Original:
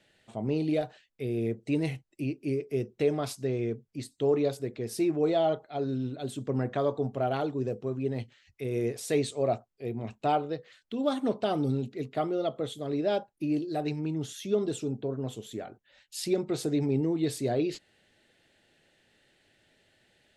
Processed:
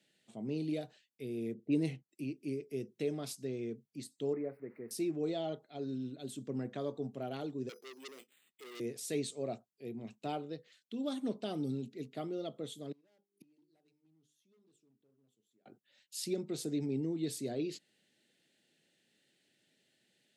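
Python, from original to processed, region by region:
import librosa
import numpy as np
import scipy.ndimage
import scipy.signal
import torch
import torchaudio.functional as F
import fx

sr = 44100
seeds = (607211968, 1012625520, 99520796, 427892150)

y = fx.chain(x, sr, fx.env_lowpass(base_hz=430.0, full_db=-23.5),
    fx.peak_eq(hz=330.0, db=5.0, octaves=2.5), at=(1.54, 2.09))
y = fx.chain(y, sr, fx.crossing_spikes(level_db=-30.5),
    fx.ellip_lowpass(hz=2100.0, order=4, stop_db=40),
    fx.low_shelf(hz=200.0, db=-8.0), at=(4.33, 4.91))
y = fx.chain(y, sr, fx.cheby1_highpass(hz=370.0, order=3),
    fx.resample_bad(factor=8, down='none', up='hold'),
    fx.transformer_sat(knee_hz=3300.0), at=(7.69, 8.8))
y = fx.chain(y, sr, fx.hum_notches(base_hz=50, count=9),
    fx.clip_hard(threshold_db=-29.0),
    fx.gate_flip(shuts_db=-36.0, range_db=-30), at=(12.92, 15.66))
y = scipy.signal.sosfilt(scipy.signal.butter(4, 160.0, 'highpass', fs=sr, output='sos'), y)
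y = fx.peak_eq(y, sr, hz=970.0, db=-12.5, octaves=2.7)
y = y * librosa.db_to_amplitude(-2.5)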